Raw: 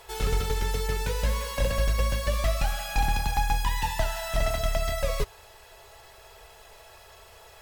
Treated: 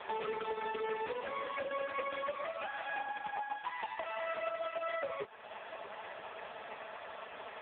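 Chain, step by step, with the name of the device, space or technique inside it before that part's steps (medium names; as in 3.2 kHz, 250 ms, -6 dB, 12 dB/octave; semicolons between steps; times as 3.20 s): voicemail (band-pass 360–2900 Hz; compression 6:1, threshold -45 dBFS, peak gain reduction 18.5 dB; trim +11.5 dB; AMR-NB 4.75 kbps 8 kHz)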